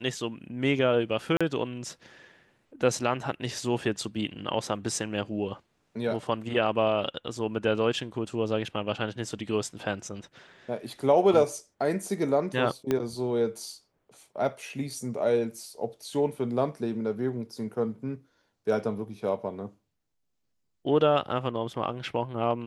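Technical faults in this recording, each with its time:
0:01.37–0:01.41: drop-out 36 ms
0:12.91: click −13 dBFS

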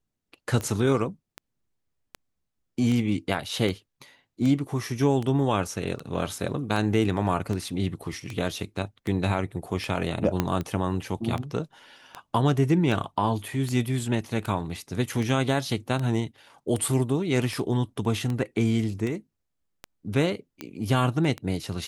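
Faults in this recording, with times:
scratch tick 78 rpm −18 dBFS
0:10.40: click −9 dBFS

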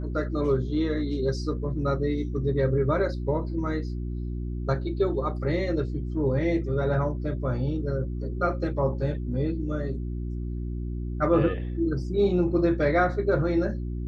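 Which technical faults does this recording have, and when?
mains hum 60 Hz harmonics 6 −31 dBFS

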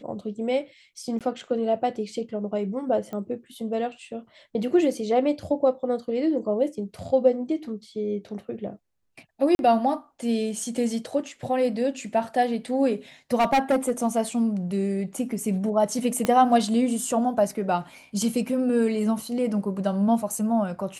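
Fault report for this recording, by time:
0:01.19–0:01.21: drop-out 17 ms
0:03.13: click −23 dBFS
0:09.55–0:09.59: drop-out 41 ms
0:13.39–0:14.07: clipping −16.5 dBFS
0:16.25: click −10 dBFS

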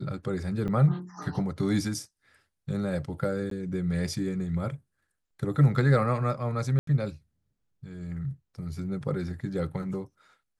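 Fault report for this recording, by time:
0:00.68–0:00.69: drop-out 6.9 ms
0:03.50–0:03.51: drop-out 13 ms
0:06.79–0:06.87: drop-out 83 ms

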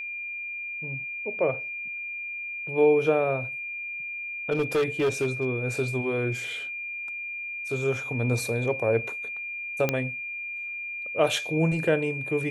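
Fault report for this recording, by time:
whistle 2,400 Hz −32 dBFS
0:04.51–0:05.46: clipping −20 dBFS
0:09.89: click −10 dBFS

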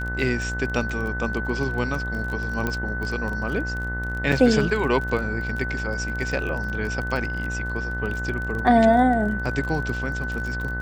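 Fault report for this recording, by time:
mains buzz 60 Hz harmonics 34 −30 dBFS
surface crackle 27 per second −29 dBFS
whistle 1,500 Hz −29 dBFS
0:02.67: click −12 dBFS
0:04.32: drop-out 4.2 ms

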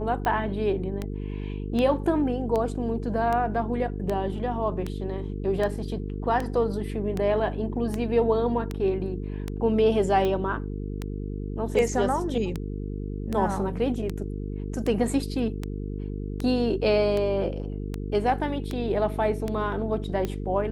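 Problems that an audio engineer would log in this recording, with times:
mains buzz 50 Hz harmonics 9 −32 dBFS
scratch tick 78 rpm −16 dBFS

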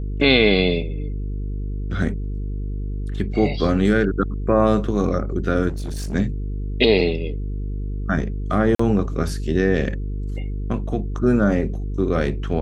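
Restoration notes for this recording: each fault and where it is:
mains buzz 50 Hz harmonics 9 −26 dBFS
0:05.68–0:06.15: clipping −24 dBFS
0:08.75–0:08.79: drop-out 44 ms

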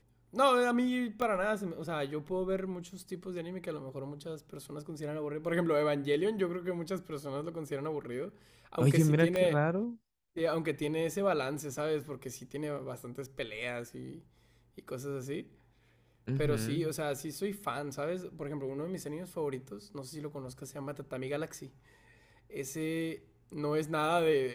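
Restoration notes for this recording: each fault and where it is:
0:01.22: click −21 dBFS
0:09.36: click −19 dBFS

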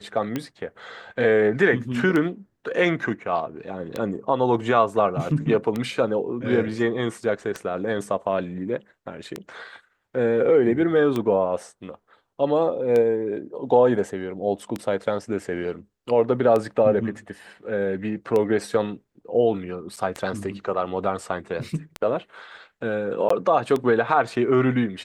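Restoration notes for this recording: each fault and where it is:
scratch tick 33 1/3 rpm −13 dBFS
0:19.96–0:19.97: drop-out 7.1 ms
0:23.29–0:23.30: drop-out 14 ms

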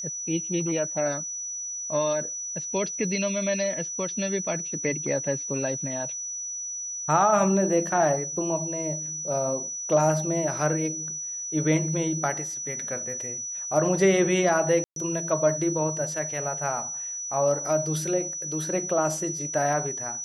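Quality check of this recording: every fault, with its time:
whistle 5,900 Hz −31 dBFS
0:14.84–0:14.96: drop-out 122 ms

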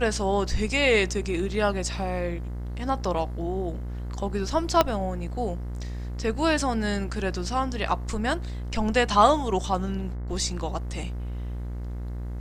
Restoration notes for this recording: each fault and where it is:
mains buzz 60 Hz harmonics 36 −32 dBFS
0:04.81: click −5 dBFS

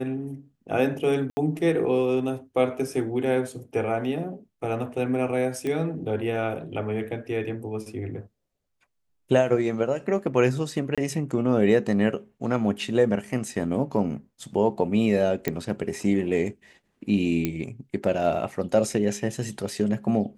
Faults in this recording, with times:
0:01.30–0:01.37: drop-out 70 ms
0:05.67: click −18 dBFS
0:10.95–0:10.98: drop-out 26 ms
0:15.48: click −11 dBFS
0:17.45: click −11 dBFS

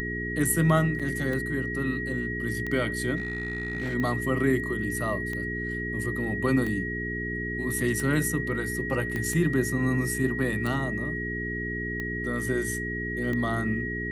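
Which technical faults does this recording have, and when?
mains hum 60 Hz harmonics 7 −34 dBFS
scratch tick 45 rpm −20 dBFS
whistle 1,900 Hz −32 dBFS
0:00.99–0:01.00: drop-out 6.3 ms
0:03.17–0:03.95: clipping −26 dBFS
0:09.16: click −18 dBFS

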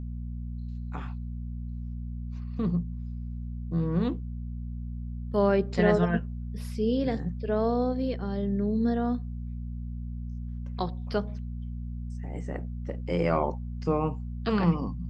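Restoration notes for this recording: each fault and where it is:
mains hum 60 Hz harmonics 4 −35 dBFS

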